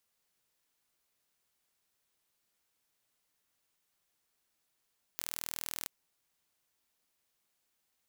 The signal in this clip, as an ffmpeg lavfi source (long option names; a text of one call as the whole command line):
ffmpeg -f lavfi -i "aevalsrc='0.299*eq(mod(n,1097),0)':duration=0.68:sample_rate=44100" out.wav